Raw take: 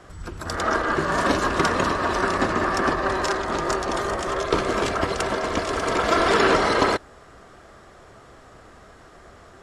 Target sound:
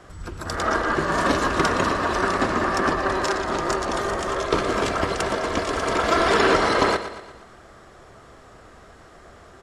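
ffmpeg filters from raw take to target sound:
-af "aecho=1:1:117|234|351|468|585:0.251|0.126|0.0628|0.0314|0.0157"

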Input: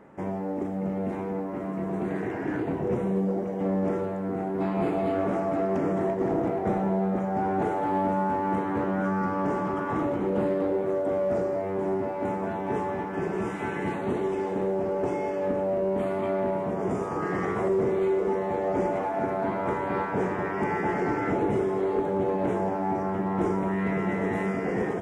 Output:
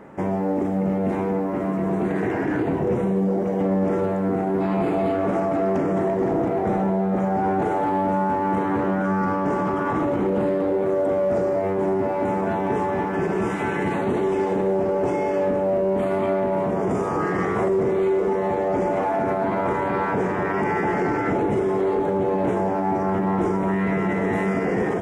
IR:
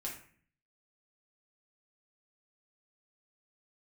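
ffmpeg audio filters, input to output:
-af "alimiter=limit=0.0708:level=0:latency=1:release=37,volume=2.51"

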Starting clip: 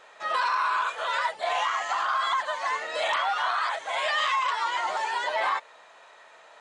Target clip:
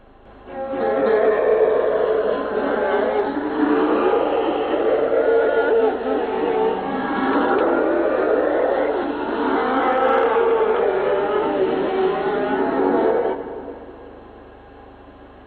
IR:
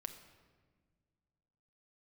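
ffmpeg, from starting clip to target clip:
-filter_complex "[0:a]aeval=exprs='val(0)+0.00251*(sin(2*PI*60*n/s)+sin(2*PI*2*60*n/s)/2+sin(2*PI*3*60*n/s)/3+sin(2*PI*4*60*n/s)/4+sin(2*PI*5*60*n/s)/5)':c=same,asplit=2[s0][s1];[1:a]atrim=start_sample=2205,adelay=109[s2];[s1][s2]afir=irnorm=-1:irlink=0,volume=2.51[s3];[s0][s3]amix=inputs=2:normalize=0,asetrate=18846,aresample=44100,volume=1.33"

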